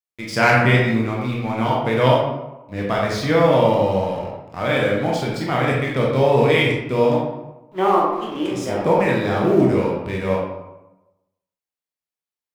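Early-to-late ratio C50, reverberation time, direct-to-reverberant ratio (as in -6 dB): 1.5 dB, 1.0 s, -3.5 dB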